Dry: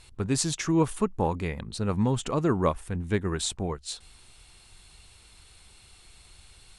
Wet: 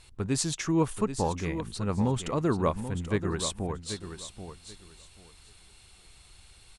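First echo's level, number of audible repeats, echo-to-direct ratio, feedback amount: −10.0 dB, 2, −10.0 dB, 19%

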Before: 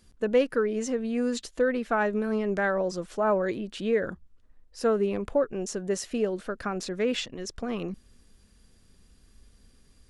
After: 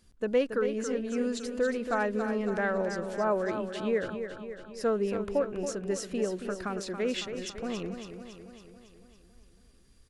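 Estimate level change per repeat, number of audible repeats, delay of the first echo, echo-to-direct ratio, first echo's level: −4.5 dB, 6, 278 ms, −6.5 dB, −8.5 dB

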